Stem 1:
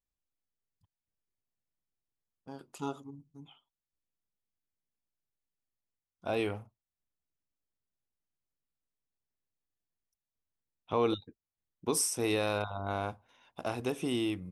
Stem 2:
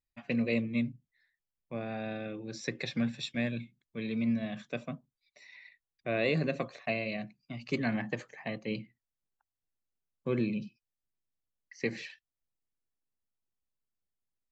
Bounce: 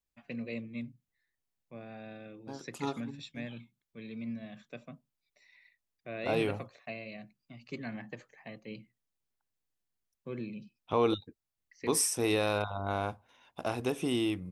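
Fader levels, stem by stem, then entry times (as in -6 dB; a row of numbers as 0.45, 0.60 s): +1.5, -9.0 dB; 0.00, 0.00 s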